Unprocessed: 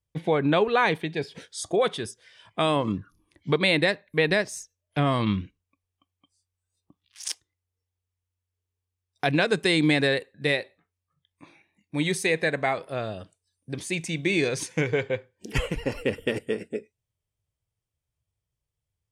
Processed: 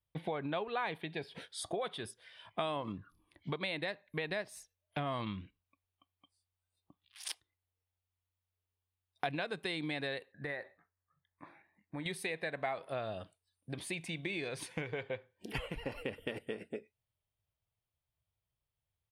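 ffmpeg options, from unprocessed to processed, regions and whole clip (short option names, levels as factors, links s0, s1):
-filter_complex "[0:a]asettb=1/sr,asplit=3[s0][s1][s2];[s0]atrim=end=10.324[s3];[s1]atrim=start=10.32:end=12.06,asetpts=PTS-STARTPTS,afade=t=in:d=0.004:c=qsin,afade=t=out:st=1.736:d=0.004:c=qsin,highshelf=f=2200:t=q:w=3:g=-7.5,acompressor=threshold=0.0178:ratio=2:attack=3.2:release=140:knee=1:detection=peak[s4];[s2]atrim=start=12.056[s5];[s3][s4]acrossfade=d=0.004:c1=hsin:c2=qsin[s6];[s6][s5]acrossfade=d=0.004:c1=qsin:c2=hsin,highshelf=f=5500:t=q:w=1.5:g=-12,acompressor=threshold=0.0251:ratio=4,firequalizer=gain_entry='entry(460,0);entry(660,6);entry(1700,2);entry(6200,0);entry(9200,15)':delay=0.05:min_phase=1,volume=0.501"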